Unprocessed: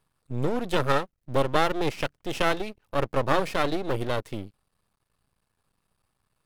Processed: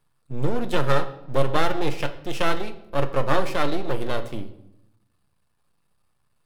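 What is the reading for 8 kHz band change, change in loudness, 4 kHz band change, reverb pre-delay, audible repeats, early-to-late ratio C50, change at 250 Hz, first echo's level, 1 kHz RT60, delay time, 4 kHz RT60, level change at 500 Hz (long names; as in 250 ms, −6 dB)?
+0.5 dB, +1.0 dB, +0.5 dB, 6 ms, no echo audible, 13.0 dB, +1.5 dB, no echo audible, 0.75 s, no echo audible, 0.60 s, +1.5 dB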